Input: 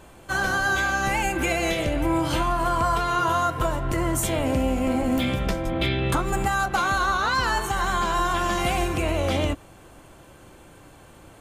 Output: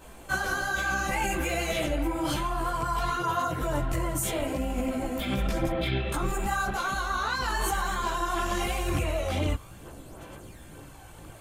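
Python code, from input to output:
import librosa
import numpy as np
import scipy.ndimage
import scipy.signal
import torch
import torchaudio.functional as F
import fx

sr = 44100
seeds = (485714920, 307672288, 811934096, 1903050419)

p1 = fx.high_shelf(x, sr, hz=10000.0, db=8.0)
p2 = fx.over_compress(p1, sr, threshold_db=-27.0, ratio=-0.5)
p3 = p1 + (p2 * 10.0 ** (1.5 / 20.0))
p4 = fx.chorus_voices(p3, sr, voices=4, hz=1.1, base_ms=17, depth_ms=3.5, mix_pct=60)
y = p4 * 10.0 ** (-7.0 / 20.0)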